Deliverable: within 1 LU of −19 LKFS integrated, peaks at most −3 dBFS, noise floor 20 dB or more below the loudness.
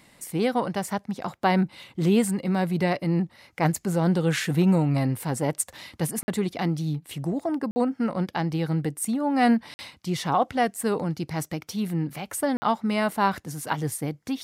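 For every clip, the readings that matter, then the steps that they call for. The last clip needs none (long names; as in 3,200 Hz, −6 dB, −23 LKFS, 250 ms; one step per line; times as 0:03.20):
number of dropouts 4; longest dropout 50 ms; integrated loudness −26.0 LKFS; sample peak −8.5 dBFS; target loudness −19.0 LKFS
→ repair the gap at 0:06.23/0:07.71/0:09.74/0:12.57, 50 ms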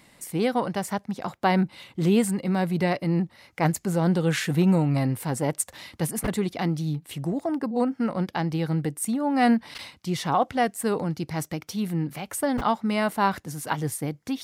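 number of dropouts 0; integrated loudness −26.0 LKFS; sample peak −8.5 dBFS; target loudness −19.0 LKFS
→ level +7 dB
brickwall limiter −3 dBFS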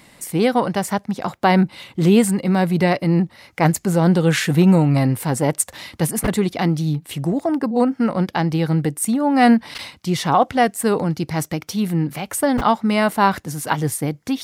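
integrated loudness −19.0 LKFS; sample peak −3.0 dBFS; background noise floor −52 dBFS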